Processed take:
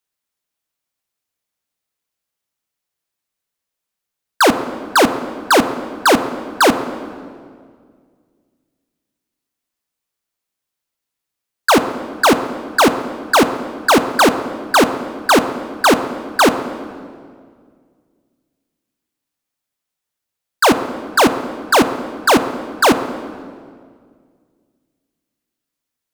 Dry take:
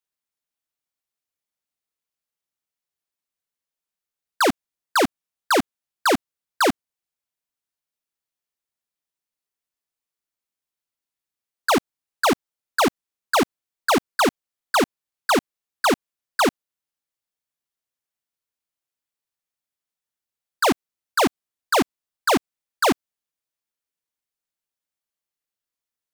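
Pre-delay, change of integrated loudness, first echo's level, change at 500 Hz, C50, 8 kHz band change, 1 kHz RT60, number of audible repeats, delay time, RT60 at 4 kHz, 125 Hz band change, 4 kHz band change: 9 ms, +7.0 dB, none, +8.0 dB, 10.5 dB, +7.0 dB, 1.8 s, none, none, 1.5 s, +8.0 dB, +7.0 dB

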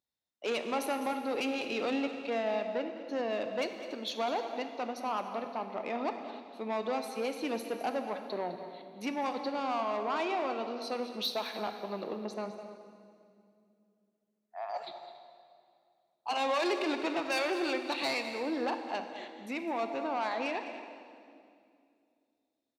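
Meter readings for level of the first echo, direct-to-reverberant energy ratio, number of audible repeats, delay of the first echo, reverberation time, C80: -13.5 dB, 5.5 dB, 2, 0.207 s, 2.4 s, 7.0 dB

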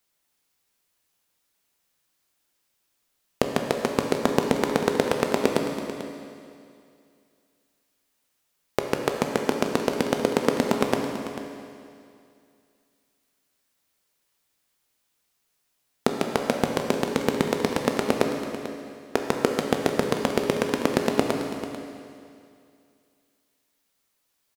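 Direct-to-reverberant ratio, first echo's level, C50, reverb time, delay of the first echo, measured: 2.5 dB, -13.5 dB, 3.5 dB, 2.4 s, 0.442 s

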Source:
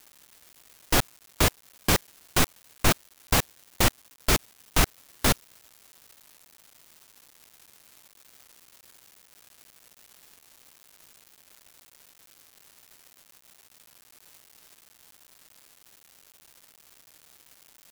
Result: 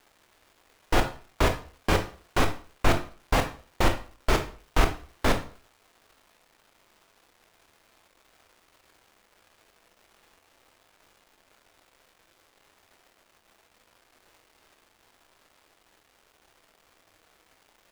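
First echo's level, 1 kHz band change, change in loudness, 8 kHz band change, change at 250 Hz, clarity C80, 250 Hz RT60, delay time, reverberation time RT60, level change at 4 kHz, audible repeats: none, +2.0 dB, -2.0 dB, -11.0 dB, 0.0 dB, 16.0 dB, 0.40 s, none, 0.45 s, -5.5 dB, none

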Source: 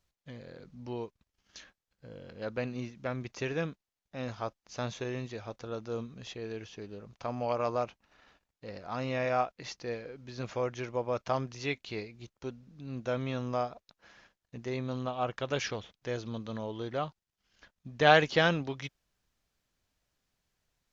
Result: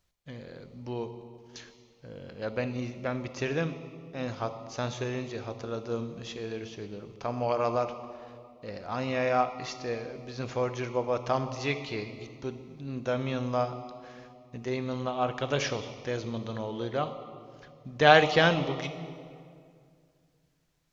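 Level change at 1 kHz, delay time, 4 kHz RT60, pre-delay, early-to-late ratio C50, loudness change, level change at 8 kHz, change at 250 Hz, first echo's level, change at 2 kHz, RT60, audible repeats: +4.0 dB, none, 1.6 s, 24 ms, 10.0 dB, +3.5 dB, n/a, +3.5 dB, none, +3.0 dB, 2.2 s, none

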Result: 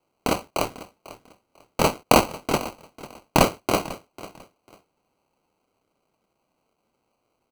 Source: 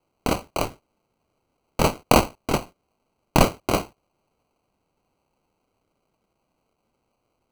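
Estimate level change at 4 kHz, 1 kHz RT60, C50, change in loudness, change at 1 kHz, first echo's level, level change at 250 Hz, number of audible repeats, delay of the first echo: +1.0 dB, none, none, +0.5 dB, +1.0 dB, -17.5 dB, -0.5 dB, 2, 0.496 s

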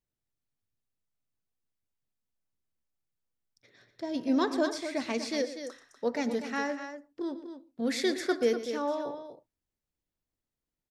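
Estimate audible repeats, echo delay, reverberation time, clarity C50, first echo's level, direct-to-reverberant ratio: 2, 0.118 s, none, none, -14.5 dB, none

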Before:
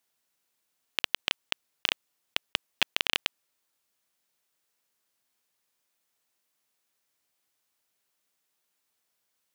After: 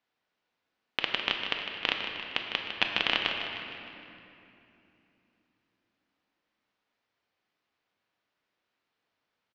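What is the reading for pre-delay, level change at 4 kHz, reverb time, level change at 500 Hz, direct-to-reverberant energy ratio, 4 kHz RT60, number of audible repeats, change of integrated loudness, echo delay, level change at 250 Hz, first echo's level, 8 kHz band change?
4 ms, 0.0 dB, 2.9 s, +4.5 dB, 1.0 dB, 2.0 s, 3, 0.0 dB, 0.154 s, +5.5 dB, -9.5 dB, under -10 dB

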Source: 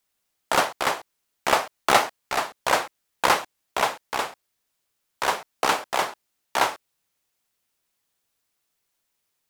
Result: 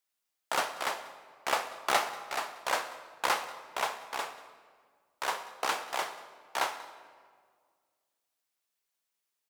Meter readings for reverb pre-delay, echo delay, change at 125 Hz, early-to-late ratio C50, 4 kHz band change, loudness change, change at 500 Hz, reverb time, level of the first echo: 20 ms, 0.188 s, under -15 dB, 11.0 dB, -8.0 dB, -8.5 dB, -10.0 dB, 1.8 s, -21.0 dB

